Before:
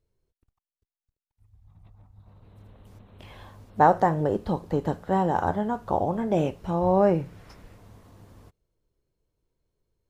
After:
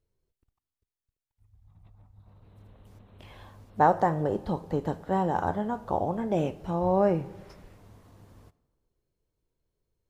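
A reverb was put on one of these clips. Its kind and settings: digital reverb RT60 1.4 s, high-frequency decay 0.45×, pre-delay 5 ms, DRR 18.5 dB; gain -3 dB

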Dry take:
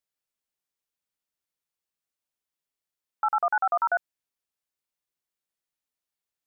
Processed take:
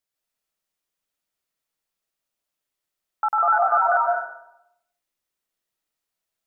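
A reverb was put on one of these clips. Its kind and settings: digital reverb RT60 0.81 s, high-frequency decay 0.5×, pre-delay 0.11 s, DRR -2 dB; gain +2 dB

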